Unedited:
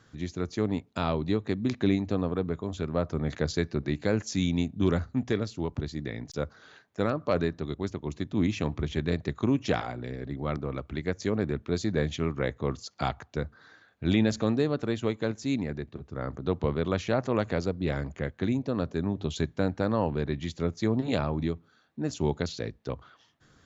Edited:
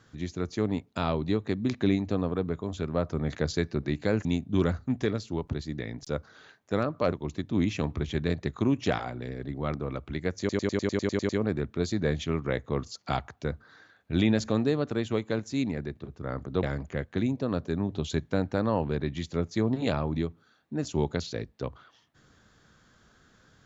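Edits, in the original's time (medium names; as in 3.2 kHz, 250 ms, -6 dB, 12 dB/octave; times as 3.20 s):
4.25–4.52 s: delete
7.39–7.94 s: delete
11.21 s: stutter 0.10 s, 10 plays
16.55–17.89 s: delete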